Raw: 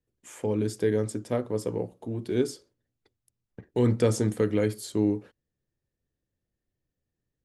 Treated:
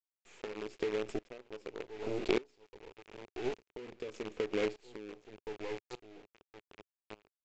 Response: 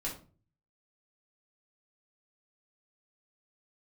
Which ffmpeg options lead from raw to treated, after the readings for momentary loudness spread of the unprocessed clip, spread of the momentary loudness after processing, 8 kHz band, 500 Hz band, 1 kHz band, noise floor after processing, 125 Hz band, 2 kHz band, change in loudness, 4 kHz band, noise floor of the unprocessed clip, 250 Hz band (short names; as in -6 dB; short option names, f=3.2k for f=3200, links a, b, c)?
10 LU, 21 LU, -17.5 dB, -9.0 dB, -5.5 dB, under -85 dBFS, -23.5 dB, -2.0 dB, -11.5 dB, -3.5 dB, under -85 dBFS, -13.5 dB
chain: -filter_complex "[0:a]bass=f=250:g=-9,treble=f=4k:g=2,asplit=2[a][b];[b]adelay=1070,lowpass=f=2.8k:p=1,volume=-15.5dB,asplit=2[c][d];[d]adelay=1070,lowpass=f=2.8k:p=1,volume=0.26,asplit=2[e][f];[f]adelay=1070,lowpass=f=2.8k:p=1,volume=0.26[g];[a][c][e][g]amix=inputs=4:normalize=0,acrusher=bits=5:dc=4:mix=0:aa=0.000001,equalizer=f=100:t=o:w=0.67:g=-4,equalizer=f=400:t=o:w=0.67:g=9,equalizer=f=2.5k:t=o:w=0.67:g=8,equalizer=f=6.3k:t=o:w=0.67:g=-4,aresample=16000,aresample=44100,acompressor=threshold=-32dB:ratio=16,aeval=exprs='val(0)*pow(10,-23*if(lt(mod(-0.84*n/s,1),2*abs(-0.84)/1000),1-mod(-0.84*n/s,1)/(2*abs(-0.84)/1000),(mod(-0.84*n/s,1)-2*abs(-0.84)/1000)/(1-2*abs(-0.84)/1000))/20)':c=same,volume=7dB"